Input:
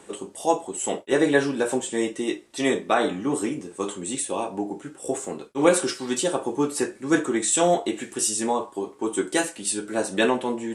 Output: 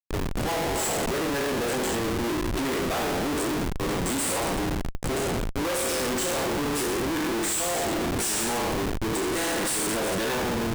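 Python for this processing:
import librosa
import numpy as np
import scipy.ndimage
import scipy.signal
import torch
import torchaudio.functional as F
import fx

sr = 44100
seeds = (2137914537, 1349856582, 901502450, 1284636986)

y = fx.spec_trails(x, sr, decay_s=1.47)
y = fx.high_shelf(y, sr, hz=7400.0, db=10.5)
y = fx.schmitt(y, sr, flips_db=-22.5)
y = y * librosa.db_to_amplitude(-7.0)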